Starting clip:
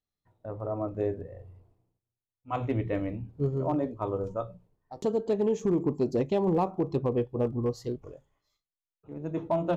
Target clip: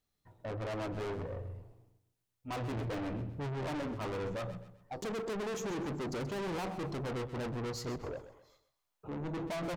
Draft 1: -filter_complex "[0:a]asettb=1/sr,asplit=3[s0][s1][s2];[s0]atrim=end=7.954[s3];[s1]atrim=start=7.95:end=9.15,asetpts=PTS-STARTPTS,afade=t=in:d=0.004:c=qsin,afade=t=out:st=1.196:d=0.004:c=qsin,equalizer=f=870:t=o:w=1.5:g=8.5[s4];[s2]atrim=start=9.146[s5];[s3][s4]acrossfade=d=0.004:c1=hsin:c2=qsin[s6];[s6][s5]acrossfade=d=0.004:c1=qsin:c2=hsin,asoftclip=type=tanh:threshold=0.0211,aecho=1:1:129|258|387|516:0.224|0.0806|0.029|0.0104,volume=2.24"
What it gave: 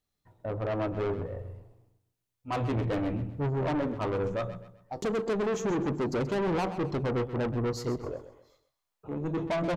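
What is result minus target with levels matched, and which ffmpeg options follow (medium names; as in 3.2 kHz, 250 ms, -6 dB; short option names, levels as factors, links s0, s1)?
saturation: distortion -4 dB
-filter_complex "[0:a]asettb=1/sr,asplit=3[s0][s1][s2];[s0]atrim=end=7.954[s3];[s1]atrim=start=7.95:end=9.15,asetpts=PTS-STARTPTS,afade=t=in:d=0.004:c=qsin,afade=t=out:st=1.196:d=0.004:c=qsin,equalizer=f=870:t=o:w=1.5:g=8.5[s4];[s2]atrim=start=9.146[s5];[s3][s4]acrossfade=d=0.004:c1=hsin:c2=qsin[s6];[s6][s5]acrossfade=d=0.004:c1=qsin:c2=hsin,asoftclip=type=tanh:threshold=0.00708,aecho=1:1:129|258|387|516:0.224|0.0806|0.029|0.0104,volume=2.24"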